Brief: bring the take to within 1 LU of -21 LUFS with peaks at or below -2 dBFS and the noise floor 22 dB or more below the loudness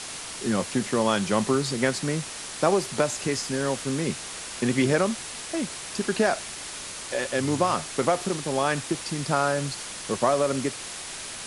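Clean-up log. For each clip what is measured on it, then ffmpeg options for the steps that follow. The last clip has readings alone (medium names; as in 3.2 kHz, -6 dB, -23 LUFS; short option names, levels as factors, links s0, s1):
noise floor -37 dBFS; noise floor target -49 dBFS; loudness -26.5 LUFS; peak level -7.5 dBFS; loudness target -21.0 LUFS
-> -af "afftdn=nr=12:nf=-37"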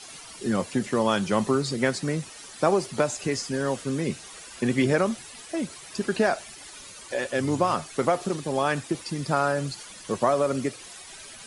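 noise floor -44 dBFS; noise floor target -49 dBFS
-> -af "afftdn=nr=6:nf=-44"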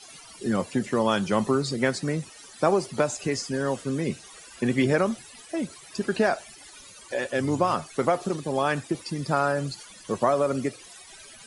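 noise floor -48 dBFS; noise floor target -49 dBFS
-> -af "afftdn=nr=6:nf=-48"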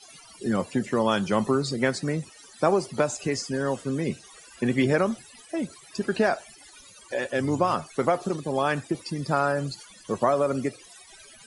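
noise floor -51 dBFS; loudness -26.5 LUFS; peak level -8.0 dBFS; loudness target -21.0 LUFS
-> -af "volume=1.88"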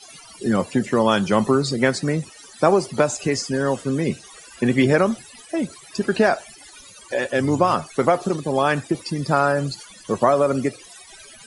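loudness -21.0 LUFS; peak level -2.5 dBFS; noise floor -45 dBFS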